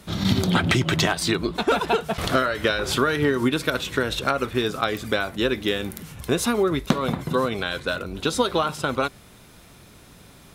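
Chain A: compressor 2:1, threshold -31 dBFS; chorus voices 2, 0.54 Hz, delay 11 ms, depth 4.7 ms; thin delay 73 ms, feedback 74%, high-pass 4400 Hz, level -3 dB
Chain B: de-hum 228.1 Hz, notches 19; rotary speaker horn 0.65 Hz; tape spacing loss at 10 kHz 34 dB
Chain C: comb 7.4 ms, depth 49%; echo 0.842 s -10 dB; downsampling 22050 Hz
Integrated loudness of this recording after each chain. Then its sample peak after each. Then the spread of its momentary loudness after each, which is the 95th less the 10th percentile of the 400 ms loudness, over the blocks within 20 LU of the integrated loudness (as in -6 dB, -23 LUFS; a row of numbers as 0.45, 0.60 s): -33.0, -28.5, -22.0 LUFS; -13.5, -10.5, -3.5 dBFS; 17, 8, 8 LU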